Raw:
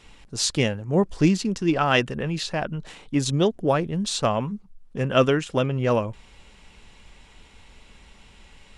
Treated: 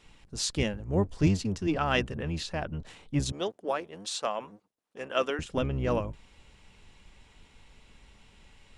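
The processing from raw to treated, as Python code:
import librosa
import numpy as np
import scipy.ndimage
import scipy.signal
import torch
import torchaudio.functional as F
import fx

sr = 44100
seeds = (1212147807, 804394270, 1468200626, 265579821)

y = fx.octave_divider(x, sr, octaves=1, level_db=-2.0)
y = fx.highpass(y, sr, hz=480.0, slope=12, at=(3.32, 5.39))
y = y * librosa.db_to_amplitude(-7.0)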